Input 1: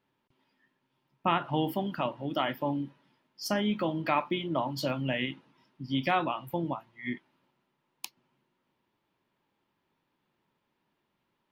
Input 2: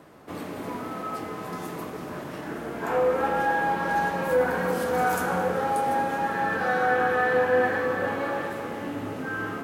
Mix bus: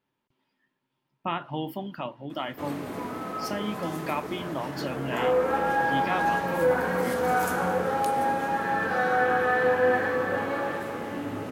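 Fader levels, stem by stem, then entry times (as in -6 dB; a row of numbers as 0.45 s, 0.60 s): -3.0 dB, -0.5 dB; 0.00 s, 2.30 s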